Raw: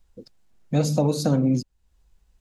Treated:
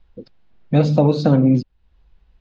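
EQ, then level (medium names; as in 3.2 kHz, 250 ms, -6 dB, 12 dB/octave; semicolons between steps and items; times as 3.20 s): low-pass 3.9 kHz 24 dB/octave; +6.5 dB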